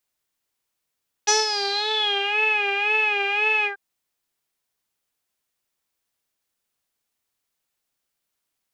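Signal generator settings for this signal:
subtractive patch with vibrato G#5, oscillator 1 saw, oscillator 2 saw, interval −12 semitones, detune 16 cents, sub −7.5 dB, noise −27 dB, filter lowpass, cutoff 1,500 Hz, Q 11, filter envelope 2 octaves, filter decay 1.09 s, attack 16 ms, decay 0.17 s, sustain −9 dB, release 0.11 s, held 2.38 s, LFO 1.9 Hz, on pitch 74 cents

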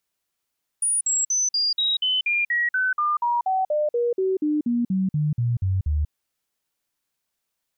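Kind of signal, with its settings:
stepped sweep 9,620 Hz down, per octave 3, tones 22, 0.19 s, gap 0.05 s −19 dBFS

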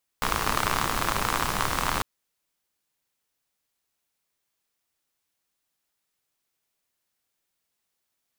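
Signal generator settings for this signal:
rain-like ticks over hiss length 1.80 s, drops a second 68, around 1,100 Hz, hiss −1 dB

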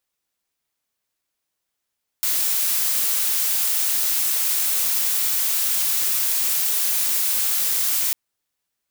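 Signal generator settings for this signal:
noise blue, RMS −21 dBFS 5.90 s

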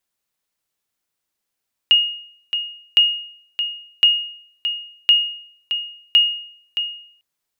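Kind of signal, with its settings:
ping with an echo 2,860 Hz, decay 0.61 s, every 1.06 s, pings 5, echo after 0.62 s, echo −9.5 dB −6 dBFS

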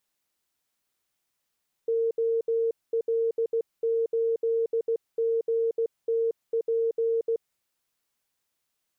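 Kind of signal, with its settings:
Morse code "OL8GTP" 16 words per minute 457 Hz −22 dBFS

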